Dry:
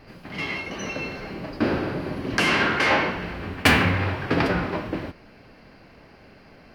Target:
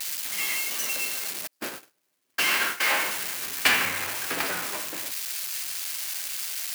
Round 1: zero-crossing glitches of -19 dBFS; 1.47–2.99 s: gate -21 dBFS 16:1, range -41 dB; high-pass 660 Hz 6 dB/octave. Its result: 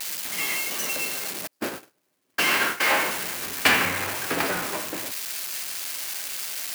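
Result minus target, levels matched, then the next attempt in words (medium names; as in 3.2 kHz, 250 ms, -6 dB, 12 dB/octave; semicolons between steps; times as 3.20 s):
500 Hz band +5.0 dB
zero-crossing glitches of -19 dBFS; 1.47–2.99 s: gate -21 dBFS 16:1, range -41 dB; high-pass 1.7 kHz 6 dB/octave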